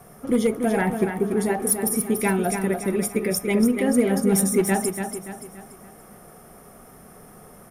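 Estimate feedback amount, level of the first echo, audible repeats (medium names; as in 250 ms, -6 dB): 42%, -7.0 dB, 4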